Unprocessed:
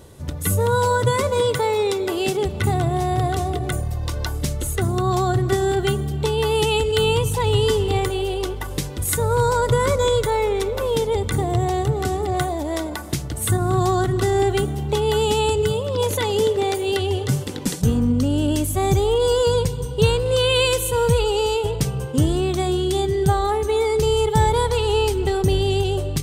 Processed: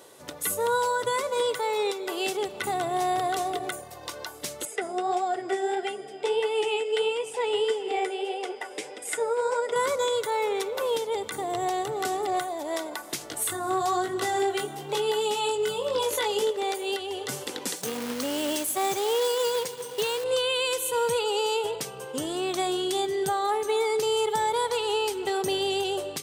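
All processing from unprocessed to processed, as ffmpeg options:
-filter_complex "[0:a]asettb=1/sr,asplit=3[a][b][c];[a]atrim=end=4.654[d];[b]atrim=start=4.65:end=9.76,asetpts=PTS-STARTPTS,afade=t=in:d=0.004:c=qsin,afade=t=out:st=5.106:d=0.004:c=qsin,aeval=exprs='val(0)+0.00355*sin(2*PI*5000*n/s)':c=same,highpass=260,equalizer=f=430:t=q:w=4:g=6,equalizer=f=730:t=q:w=4:g=6,equalizer=f=1.1k:t=q:w=4:g=-8,equalizer=f=2.2k:t=q:w=4:g=6,equalizer=f=4.2k:t=q:w=4:g=-9,equalizer=f=6.2k:t=q:w=4:g=-7,lowpass=f=8.8k:w=0.5412,lowpass=f=8.8k:w=1.3066,flanger=delay=3.6:depth=7.3:regen=40:speed=1.6:shape=sinusoidal[e];[c]atrim=start=9.756[f];[d][e]acrossfade=d=0.004:c1=hsin:c2=qsin[g];[g][f]acrossfade=d=0.004:c1=qsin:c2=hsin,asettb=1/sr,asplit=3[h][i][j];[h]atrim=end=13.194[k];[i]atrim=start=13.19:end=16.51,asetpts=PTS-STARTPTS,afade=t=in:d=0.004:c=qsin,afade=t=out:st=3.316:d=0.004:c=qsin,flanger=delay=18.5:depth=3:speed=1,acontrast=30[l];[j]atrim=start=16.506[m];[k][l]acrossfade=d=0.004:c1=hsin:c2=qsin[n];[n][m]acrossfade=d=0.004:c1=qsin:c2=hsin,asettb=1/sr,asplit=3[o][p][q];[o]atrim=end=17.764[r];[p]atrim=start=17.76:end=20.24,asetpts=PTS-STARTPTS,afade=t=in:d=0.004:c=qsin,afade=t=out:st=2.476:d=0.004:c=qsin,highpass=f=220:p=1,acrusher=bits=3:mode=log:mix=0:aa=0.000001[s];[q]atrim=start=20.236[t];[r][s]acrossfade=d=0.004:c1=hsin:c2=qsin[u];[u][t]acrossfade=d=0.004:c1=qsin:c2=hsin,highpass=470,alimiter=limit=-17dB:level=0:latency=1:release=497"

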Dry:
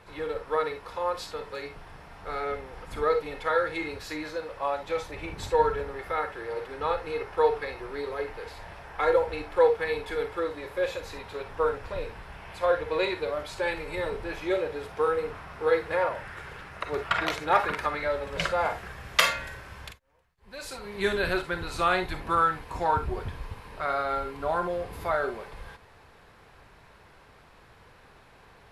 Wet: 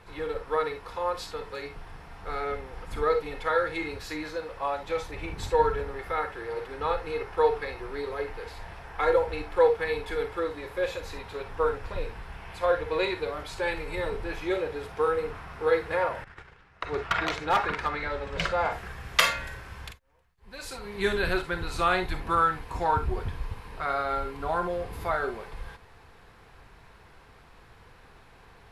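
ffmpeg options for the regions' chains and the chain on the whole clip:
-filter_complex "[0:a]asettb=1/sr,asplit=3[a][b][c];[a]atrim=end=16.244[d];[b]atrim=start=16.24:end=18.72,asetpts=PTS-STARTPTS,afade=t=in:d=0.004:c=qsin,afade=t=out:st=2.476:d=0.004:c=qsin,lowpass=6.7k,agate=range=-15dB:threshold=-41dB:ratio=16:release=100:detection=peak,volume=17dB,asoftclip=hard,volume=-17dB[e];[c]atrim=start=18.716[f];[d][e]acrossfade=d=0.004:c1=hsin:c2=qsin[g];[g][f]acrossfade=d=0.004:c1=qsin:c2=hsin,lowshelf=f=62:g=7,bandreject=f=590:w=12"

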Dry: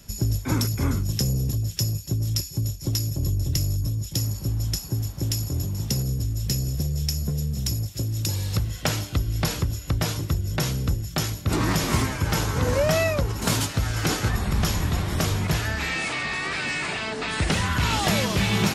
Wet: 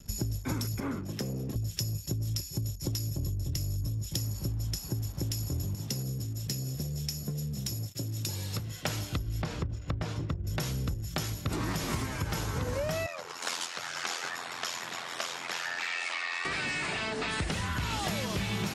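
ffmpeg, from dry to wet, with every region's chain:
-filter_complex "[0:a]asettb=1/sr,asplit=3[a][b][c];[a]atrim=end=0.804[d];[b]atrim=start=0.8:end=1.56,asetpts=PTS-STARTPTS,afade=t=in:d=0.004:c=qsin,afade=t=out:st=0.756:d=0.004:c=qsin,highpass=43,acrossover=split=180 2600:gain=0.126 1 0.224[e][f][g];[e][f][g]amix=inputs=3:normalize=0,asoftclip=type=hard:threshold=-24dB[h];[c]atrim=start=1.556[i];[d][h]acrossfade=d=0.004:c1=hsin:c2=qsin[j];[j][i]acrossfade=d=0.004:c1=qsin:c2=hsin,asettb=1/sr,asplit=3[k][l][m];[k]atrim=end=5.754[n];[l]atrim=start=5.75:end=8.86,asetpts=PTS-STARTPTS,afade=t=in:d=0.004:c=qsin,afade=t=out:st=3.106:d=0.004:c=qsin,highpass=120,flanger=delay=6.5:depth=3:regen=-62:speed=1.3:shape=triangular[o];[m]atrim=start=8.856[p];[n][o]acrossfade=d=0.004:c1=hsin:c2=qsin[q];[q][p]acrossfade=d=0.004:c1=qsin:c2=hsin,asettb=1/sr,asplit=3[r][s][t];[r]atrim=end=9.424[u];[s]atrim=start=9.42:end=10.47,asetpts=PTS-STARTPTS,afade=t=in:d=0.004:c=qsin,afade=t=out:st=1.046:d=0.004:c=qsin,lowpass=f=11k:w=0.5412,lowpass=f=11k:w=1.3066,aemphasis=mode=reproduction:type=75kf,bandreject=f=50:t=h:w=6,bandreject=f=100:t=h:w=6[v];[t]atrim=start=10.466[w];[u][v]acrossfade=d=0.004:c1=hsin:c2=qsin[x];[x][w]acrossfade=d=0.004:c1=qsin:c2=hsin,asettb=1/sr,asplit=3[y][z][aa];[y]atrim=end=13.064[ab];[z]atrim=start=13.06:end=16.45,asetpts=PTS-STARTPTS,afade=t=in:d=0.004:c=qsin,afade=t=out:st=3.386:d=0.004:c=qsin,aphaser=in_gain=1:out_gain=1:delay=4.3:decay=0.25:speed=1.1:type=triangular,aeval=exprs='val(0)*sin(2*PI*43*n/s)':c=same,highpass=790,lowpass=7.5k[ac];[aa]atrim=start=16.446[ad];[ab][ac]acrossfade=d=0.004:c1=hsin:c2=qsin[ae];[ae][ad]acrossfade=d=0.004:c1=qsin:c2=hsin,acompressor=threshold=-30dB:ratio=5,anlmdn=0.00398"

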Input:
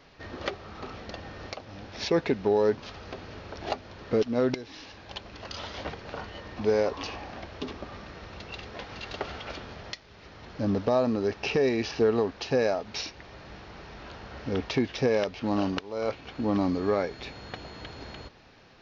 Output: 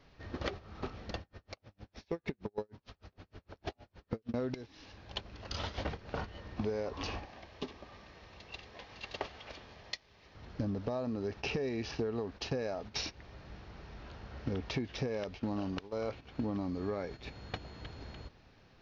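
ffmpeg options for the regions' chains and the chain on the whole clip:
-filter_complex "[0:a]asettb=1/sr,asplit=3[a][b][c];[a]atrim=end=1.214[d];[b]atrim=start=1.21:end=4.34,asetpts=PTS-STARTPTS,afade=t=in:d=0.004:c=qsin,afade=t=out:st=3.126:d=0.004:c=qsin,bandreject=f=118.9:t=h:w=4,bandreject=f=237.8:t=h:w=4,bandreject=f=356.7:t=h:w=4,bandreject=f=475.6:t=h:w=4,bandreject=f=594.5:t=h:w=4,bandreject=f=713.4:t=h:w=4,bandreject=f=832.3:t=h:w=4,bandreject=f=951.2:t=h:w=4,bandreject=f=1.0701k:t=h:w=4,bandreject=f=1.189k:t=h:w=4,bandreject=f=1.3079k:t=h:w=4,bandreject=f=1.4268k:t=h:w=4,bandreject=f=1.5457k:t=h:w=4,bandreject=f=1.6646k:t=h:w=4,bandreject=f=1.7835k:t=h:w=4,bandreject=f=1.9024k:t=h:w=4,bandreject=f=2.0213k:t=h:w=4,bandreject=f=2.1402k:t=h:w=4,bandreject=f=2.2591k:t=h:w=4,bandreject=f=2.378k:t=h:w=4,bandreject=f=2.4969k:t=h:w=4,bandreject=f=2.6158k:t=h:w=4,bandreject=f=2.7347k:t=h:w=4,bandreject=f=2.8536k:t=h:w=4,bandreject=f=2.9725k:t=h:w=4,bandreject=f=3.0914k:t=h:w=4,bandreject=f=3.2103k:t=h:w=4,bandreject=f=3.3292k:t=h:w=4,bandreject=f=3.4481k:t=h:w=4,bandreject=f=3.567k:t=h:w=4,bandreject=f=3.6859k:t=h:w=4,bandreject=f=3.8048k:t=h:w=4,bandreject=f=3.9237k:t=h:w=4,acompressor=threshold=-26dB:ratio=4:attack=3.2:release=140:knee=1:detection=peak,aeval=exprs='val(0)*pow(10,-39*(0.5-0.5*cos(2*PI*6.5*n/s))/20)':c=same[e];[c]atrim=start=4.336[f];[d][e]acrossfade=d=0.004:c1=hsin:c2=qsin[g];[g][f]acrossfade=d=0.004:c1=qsin:c2=hsin,asettb=1/sr,asplit=3[h][i][j];[h]atrim=end=7.254[k];[i]atrim=start=7.25:end=10.35,asetpts=PTS-STARTPTS,afade=t=in:d=0.004:c=qsin,afade=t=out:st=3.096:d=0.004:c=qsin,lowshelf=f=350:g=-11,bandreject=f=1.4k:w=6.7[l];[j]atrim=start=10.346[m];[k][l]acrossfade=d=0.004:c1=hsin:c2=qsin[n];[n][m]acrossfade=d=0.004:c1=qsin:c2=hsin,agate=range=-13dB:threshold=-37dB:ratio=16:detection=peak,lowshelf=f=170:g=9.5,acompressor=threshold=-38dB:ratio=6,volume=4dB"

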